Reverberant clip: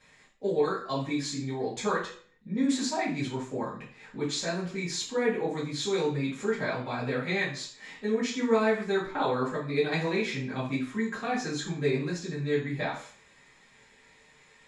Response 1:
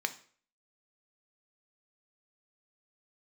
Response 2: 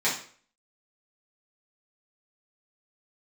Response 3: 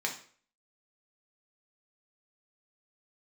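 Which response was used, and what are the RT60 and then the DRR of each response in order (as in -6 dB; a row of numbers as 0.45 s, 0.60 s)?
2; 0.50 s, 0.50 s, 0.50 s; 7.5 dB, -10.0 dB, -0.5 dB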